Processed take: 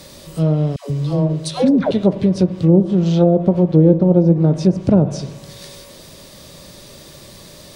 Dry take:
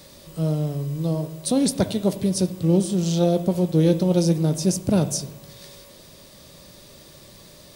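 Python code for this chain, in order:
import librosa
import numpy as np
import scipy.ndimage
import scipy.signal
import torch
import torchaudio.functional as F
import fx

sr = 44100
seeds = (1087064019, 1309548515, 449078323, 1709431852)

y = fx.dispersion(x, sr, late='lows', ms=142.0, hz=590.0, at=(0.76, 1.91))
y = fx.env_lowpass_down(y, sr, base_hz=770.0, full_db=-14.5)
y = y * librosa.db_to_amplitude(7.0)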